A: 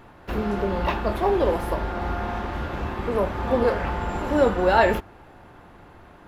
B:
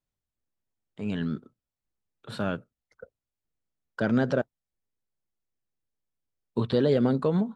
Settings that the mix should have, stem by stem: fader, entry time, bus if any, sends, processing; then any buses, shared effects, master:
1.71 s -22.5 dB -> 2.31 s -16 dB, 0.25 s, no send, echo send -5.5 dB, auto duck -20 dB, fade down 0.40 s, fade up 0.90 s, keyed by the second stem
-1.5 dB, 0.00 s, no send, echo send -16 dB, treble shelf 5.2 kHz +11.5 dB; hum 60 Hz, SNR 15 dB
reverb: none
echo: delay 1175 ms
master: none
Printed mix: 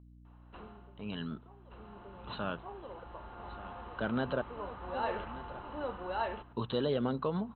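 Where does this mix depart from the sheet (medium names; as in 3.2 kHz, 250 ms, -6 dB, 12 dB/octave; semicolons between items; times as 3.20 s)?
stem A -22.5 dB -> -14.0 dB; master: extra rippled Chebyshev low-pass 4.1 kHz, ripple 9 dB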